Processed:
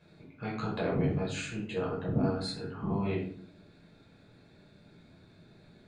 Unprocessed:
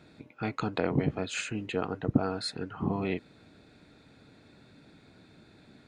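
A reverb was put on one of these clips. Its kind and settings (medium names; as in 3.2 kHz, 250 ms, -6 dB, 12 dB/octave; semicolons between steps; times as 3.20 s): simulated room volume 600 m³, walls furnished, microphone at 5.4 m; trim -10.5 dB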